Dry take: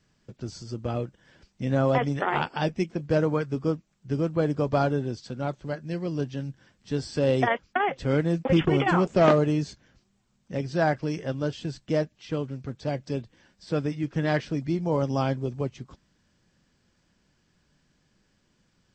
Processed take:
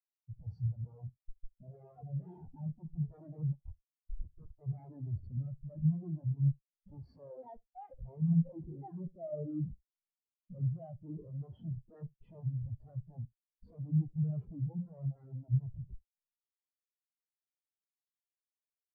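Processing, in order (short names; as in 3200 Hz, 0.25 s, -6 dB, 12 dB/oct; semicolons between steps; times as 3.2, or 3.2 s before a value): in parallel at +2 dB: compressor 8:1, threshold -36 dBFS, peak gain reduction 21 dB; on the sum: limiter -15.5 dBFS, peak gain reduction 9.5 dB; vocal rider within 4 dB 2 s; sine folder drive 12 dB, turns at -12.5 dBFS; 3.54–4.59 band-pass 6200 Hz, Q 0.56; Schmitt trigger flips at -23 dBFS; early reflections 25 ms -17 dB, 72 ms -8 dB; on a send at -21.5 dB: reverb RT60 3.0 s, pre-delay 60 ms; on the sum: spectral expander 4:1; gain -9 dB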